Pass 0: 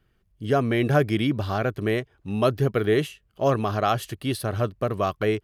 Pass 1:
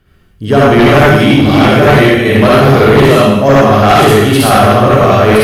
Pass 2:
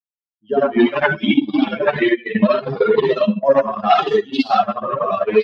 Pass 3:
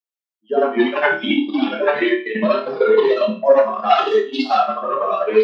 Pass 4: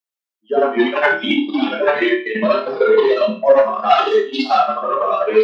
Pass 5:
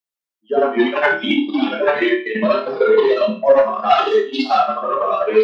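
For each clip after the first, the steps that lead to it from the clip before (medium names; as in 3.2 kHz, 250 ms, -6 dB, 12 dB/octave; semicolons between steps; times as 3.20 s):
chunks repeated in reverse 698 ms, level -2 dB; reverberation RT60 0.85 s, pre-delay 52 ms, DRR -7 dB; sine folder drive 10 dB, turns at 0.5 dBFS; trim -2 dB
expander on every frequency bin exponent 3; elliptic band-pass 190–4500 Hz, stop band 40 dB; transient shaper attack +5 dB, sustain -11 dB; trim -2 dB
high-pass 260 Hz 24 dB/octave; on a send: flutter echo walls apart 4.7 m, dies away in 0.3 s; on the sum: trim -1 dB
bass shelf 140 Hz -9.5 dB; in parallel at -8.5 dB: saturation -12.5 dBFS, distortion -13 dB
bass shelf 180 Hz +4 dB; trim -1 dB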